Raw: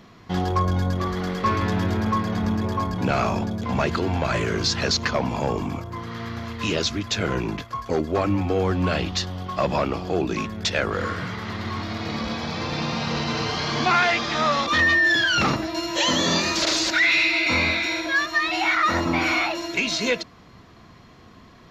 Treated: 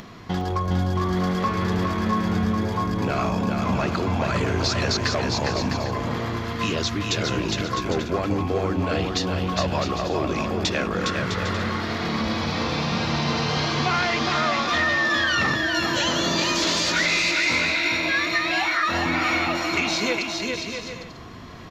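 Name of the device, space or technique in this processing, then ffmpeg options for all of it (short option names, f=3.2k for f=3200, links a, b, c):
upward and downward compression: -filter_complex "[0:a]asettb=1/sr,asplit=3[a][b][c];[a]atrim=end=16.374[d];[b]atrim=start=16.37:end=17.97,asetpts=PTS-STARTPTS,afade=t=in:d=0.004:c=qsin,afade=t=out:st=1.596:d=0.004:c=qsin,asplit=2[e][f];[f]adelay=17,volume=-2.5dB[g];[e][g]amix=inputs=2:normalize=0,atrim=end_sample=70560[h];[c]atrim=start=17.966[i];[d][h]acrossfade=d=0.004:c1=hsin:c2=qsin[j];[j][i]acrossfade=d=0.004:c1=qsin:c2=hsin,acompressor=mode=upward:threshold=-41dB:ratio=2.5,acompressor=threshold=-28dB:ratio=3,aecho=1:1:410|656|803.6|892.2|945.3:0.631|0.398|0.251|0.158|0.1,volume=4dB"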